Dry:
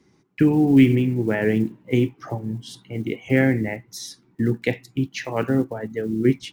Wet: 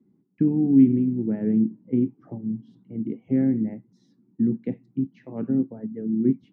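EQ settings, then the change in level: band-pass 220 Hz, Q 2.7; air absorption 62 m; +2.5 dB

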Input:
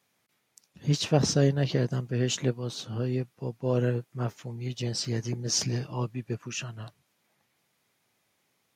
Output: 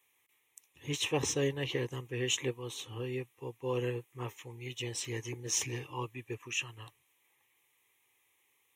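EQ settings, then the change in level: tilt shelf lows -5.5 dB, about 1100 Hz; fixed phaser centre 970 Hz, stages 8; 0.0 dB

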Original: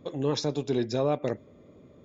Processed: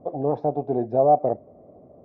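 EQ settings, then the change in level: synth low-pass 720 Hz, resonance Q 8.9; air absorption 74 m; 0.0 dB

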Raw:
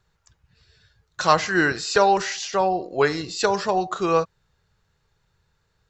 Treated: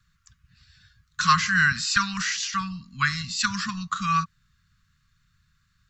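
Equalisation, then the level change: Chebyshev band-stop 240–1100 Hz, order 5; +2.5 dB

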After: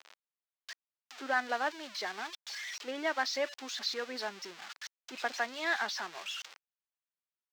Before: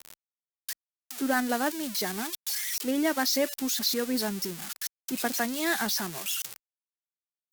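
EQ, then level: HPF 690 Hz 12 dB/oct; air absorption 180 m; 0.0 dB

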